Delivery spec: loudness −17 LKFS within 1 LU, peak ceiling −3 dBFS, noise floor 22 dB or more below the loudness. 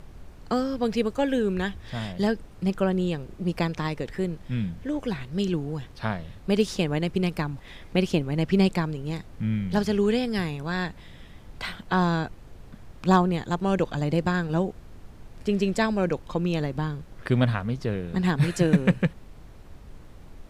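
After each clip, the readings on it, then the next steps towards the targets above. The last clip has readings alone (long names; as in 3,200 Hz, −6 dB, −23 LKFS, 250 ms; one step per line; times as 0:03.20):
background noise floor −47 dBFS; target noise floor −49 dBFS; integrated loudness −26.5 LKFS; sample peak −8.5 dBFS; target loudness −17.0 LKFS
→ noise reduction from a noise print 6 dB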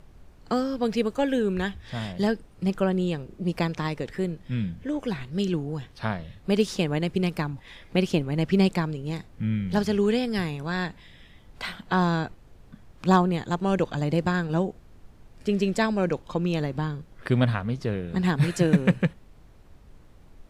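background noise floor −52 dBFS; integrated loudness −26.5 LKFS; sample peak −8.5 dBFS; target loudness −17.0 LKFS
→ level +9.5 dB
brickwall limiter −3 dBFS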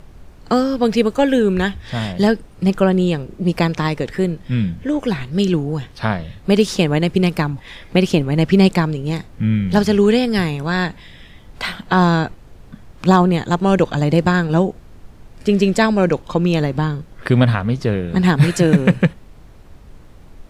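integrated loudness −17.5 LKFS; sample peak −3.0 dBFS; background noise floor −43 dBFS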